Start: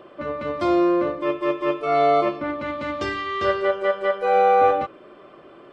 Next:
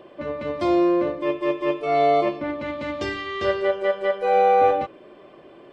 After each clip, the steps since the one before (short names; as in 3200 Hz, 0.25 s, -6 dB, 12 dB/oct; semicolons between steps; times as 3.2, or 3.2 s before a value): bell 1300 Hz -12 dB 0.28 oct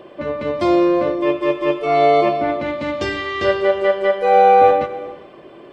non-linear reverb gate 0.43 s flat, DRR 11.5 dB; gain +5.5 dB